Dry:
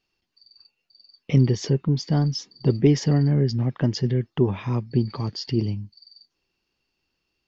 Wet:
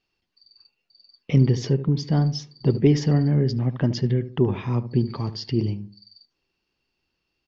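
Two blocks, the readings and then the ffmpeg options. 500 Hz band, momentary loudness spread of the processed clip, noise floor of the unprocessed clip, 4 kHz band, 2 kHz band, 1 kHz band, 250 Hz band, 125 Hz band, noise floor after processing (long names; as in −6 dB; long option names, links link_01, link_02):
0.0 dB, 7 LU, −78 dBFS, −1.5 dB, 0.0 dB, +0.5 dB, +0.5 dB, +0.5 dB, −78 dBFS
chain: -filter_complex "[0:a]lowpass=5800,asplit=2[link_01][link_02];[link_02]adelay=74,lowpass=frequency=930:poles=1,volume=-11.5dB,asplit=2[link_03][link_04];[link_04]adelay=74,lowpass=frequency=930:poles=1,volume=0.36,asplit=2[link_05][link_06];[link_06]adelay=74,lowpass=frequency=930:poles=1,volume=0.36,asplit=2[link_07][link_08];[link_08]adelay=74,lowpass=frequency=930:poles=1,volume=0.36[link_09];[link_01][link_03][link_05][link_07][link_09]amix=inputs=5:normalize=0"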